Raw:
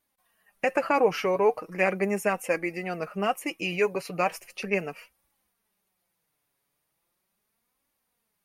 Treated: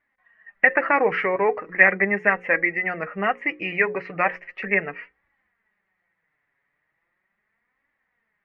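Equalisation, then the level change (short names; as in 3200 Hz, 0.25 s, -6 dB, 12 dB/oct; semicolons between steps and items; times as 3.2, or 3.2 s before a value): synth low-pass 1900 Hz, resonance Q 8.5; air absorption 110 m; notches 60/120/180/240/300/360/420/480/540 Hz; +1.5 dB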